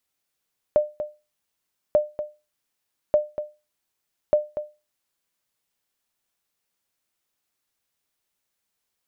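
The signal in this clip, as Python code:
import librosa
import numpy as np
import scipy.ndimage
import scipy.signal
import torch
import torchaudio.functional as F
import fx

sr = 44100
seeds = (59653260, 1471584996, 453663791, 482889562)

y = fx.sonar_ping(sr, hz=600.0, decay_s=0.27, every_s=1.19, pings=4, echo_s=0.24, echo_db=-11.0, level_db=-10.0)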